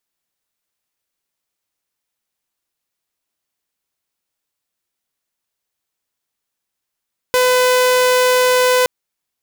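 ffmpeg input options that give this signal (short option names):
-f lavfi -i "aevalsrc='0.376*(2*mod(503*t,1)-1)':d=1.52:s=44100"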